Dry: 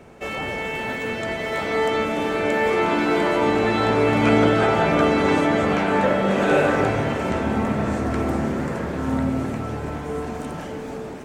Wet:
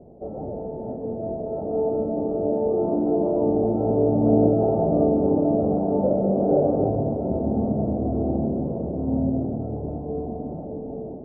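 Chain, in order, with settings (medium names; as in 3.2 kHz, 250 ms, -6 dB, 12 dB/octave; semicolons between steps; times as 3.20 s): elliptic low-pass 710 Hz, stop band 70 dB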